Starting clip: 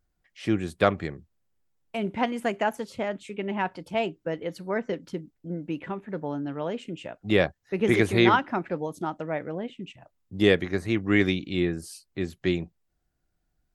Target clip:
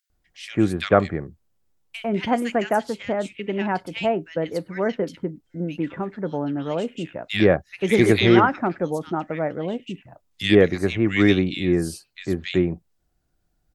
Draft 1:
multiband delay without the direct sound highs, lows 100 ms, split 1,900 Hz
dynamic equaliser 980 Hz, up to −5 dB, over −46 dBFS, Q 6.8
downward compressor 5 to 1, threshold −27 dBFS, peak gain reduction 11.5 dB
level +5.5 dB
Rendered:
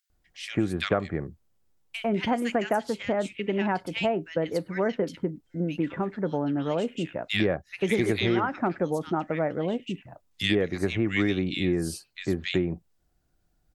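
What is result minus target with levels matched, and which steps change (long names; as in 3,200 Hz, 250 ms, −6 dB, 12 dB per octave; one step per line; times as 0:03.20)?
downward compressor: peak gain reduction +11.5 dB
remove: downward compressor 5 to 1, threshold −27 dBFS, peak gain reduction 11.5 dB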